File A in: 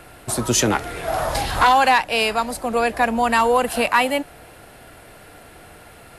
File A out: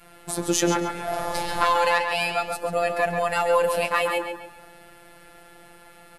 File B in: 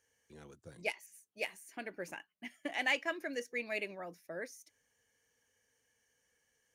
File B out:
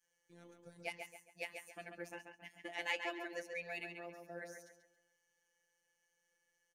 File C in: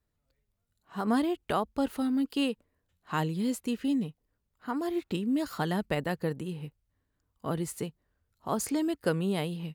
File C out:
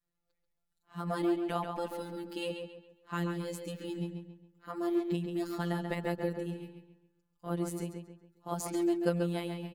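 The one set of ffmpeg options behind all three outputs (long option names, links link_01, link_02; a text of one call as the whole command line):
ffmpeg -i in.wav -filter_complex "[0:a]adynamicequalizer=threshold=0.0251:dfrequency=340:dqfactor=0.71:tfrequency=340:tqfactor=0.71:attack=5:release=100:ratio=0.375:range=2:mode=boostabove:tftype=bell,afftfilt=real='hypot(re,im)*cos(PI*b)':imag='0':win_size=1024:overlap=0.75,asplit=2[link_01][link_02];[link_02]adelay=137,lowpass=frequency=4400:poles=1,volume=-5.5dB,asplit=2[link_03][link_04];[link_04]adelay=137,lowpass=frequency=4400:poles=1,volume=0.38,asplit=2[link_05][link_06];[link_06]adelay=137,lowpass=frequency=4400:poles=1,volume=0.38,asplit=2[link_07][link_08];[link_08]adelay=137,lowpass=frequency=4400:poles=1,volume=0.38,asplit=2[link_09][link_10];[link_10]adelay=137,lowpass=frequency=4400:poles=1,volume=0.38[link_11];[link_01][link_03][link_05][link_07][link_09][link_11]amix=inputs=6:normalize=0,volume=-2.5dB" out.wav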